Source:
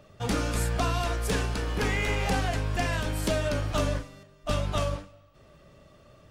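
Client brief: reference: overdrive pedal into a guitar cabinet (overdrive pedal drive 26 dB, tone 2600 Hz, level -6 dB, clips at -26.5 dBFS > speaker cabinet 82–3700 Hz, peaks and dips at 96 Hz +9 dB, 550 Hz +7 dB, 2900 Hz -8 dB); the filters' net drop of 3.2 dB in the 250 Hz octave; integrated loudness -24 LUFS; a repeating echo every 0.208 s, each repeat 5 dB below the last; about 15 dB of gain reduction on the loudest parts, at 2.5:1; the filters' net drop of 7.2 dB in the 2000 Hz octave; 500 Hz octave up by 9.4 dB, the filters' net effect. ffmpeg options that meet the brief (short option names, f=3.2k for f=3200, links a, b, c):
-filter_complex "[0:a]equalizer=f=250:t=o:g=-7.5,equalizer=f=500:t=o:g=8.5,equalizer=f=2k:t=o:g=-8.5,acompressor=threshold=-45dB:ratio=2.5,aecho=1:1:208|416|624|832|1040|1248|1456:0.562|0.315|0.176|0.0988|0.0553|0.031|0.0173,asplit=2[a][b];[b]highpass=f=720:p=1,volume=26dB,asoftclip=type=tanh:threshold=-26.5dB[c];[a][c]amix=inputs=2:normalize=0,lowpass=f=2.6k:p=1,volume=-6dB,highpass=82,equalizer=f=96:t=q:w=4:g=9,equalizer=f=550:t=q:w=4:g=7,equalizer=f=2.9k:t=q:w=4:g=-8,lowpass=f=3.7k:w=0.5412,lowpass=f=3.7k:w=1.3066,volume=7dB"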